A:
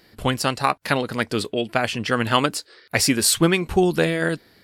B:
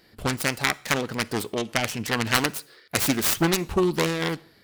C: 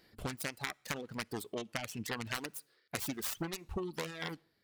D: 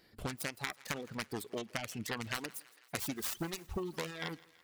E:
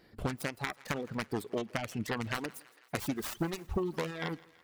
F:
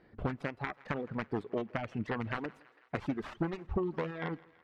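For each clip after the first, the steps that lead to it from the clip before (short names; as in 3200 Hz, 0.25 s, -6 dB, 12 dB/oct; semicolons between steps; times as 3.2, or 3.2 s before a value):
self-modulated delay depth 0.62 ms; on a send at -21.5 dB: reverb RT60 0.50 s, pre-delay 37 ms; on the sum: gain -3 dB
reverb removal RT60 1.3 s; compressor 6:1, threshold -27 dBFS, peak gain reduction 11.5 dB; gain -7.5 dB
thinning echo 0.165 s, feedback 69%, high-pass 530 Hz, level -21 dB
high shelf 2300 Hz -9.5 dB; gain +6 dB
LPF 2100 Hz 12 dB/oct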